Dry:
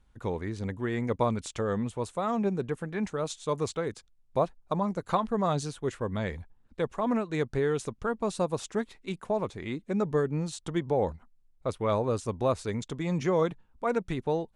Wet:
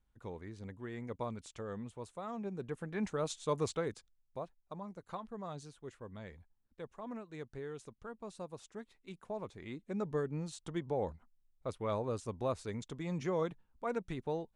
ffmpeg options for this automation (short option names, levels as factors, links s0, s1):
-af "volume=1.58,afade=t=in:st=2.48:d=0.64:silence=0.354813,afade=t=out:st=3.78:d=0.62:silence=0.237137,afade=t=in:st=8.78:d=1.35:silence=0.398107"